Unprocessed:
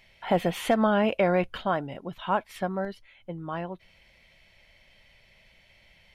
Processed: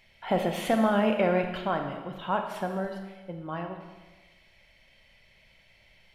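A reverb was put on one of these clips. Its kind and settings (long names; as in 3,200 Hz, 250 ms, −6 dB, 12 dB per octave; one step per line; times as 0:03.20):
four-comb reverb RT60 1.3 s, combs from 28 ms, DRR 4.5 dB
level −2.5 dB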